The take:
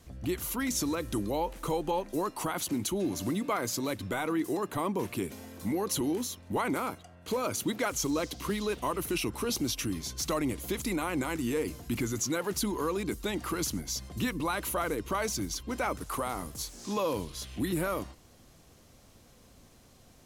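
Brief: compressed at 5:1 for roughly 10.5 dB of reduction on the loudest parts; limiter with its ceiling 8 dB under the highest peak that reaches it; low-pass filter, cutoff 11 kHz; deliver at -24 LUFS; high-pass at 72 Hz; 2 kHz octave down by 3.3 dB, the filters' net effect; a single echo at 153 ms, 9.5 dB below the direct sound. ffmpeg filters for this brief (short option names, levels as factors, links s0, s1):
-af "highpass=72,lowpass=11000,equalizer=f=2000:t=o:g=-4.5,acompressor=threshold=0.0112:ratio=5,alimiter=level_in=3.98:limit=0.0631:level=0:latency=1,volume=0.251,aecho=1:1:153:0.335,volume=10.6"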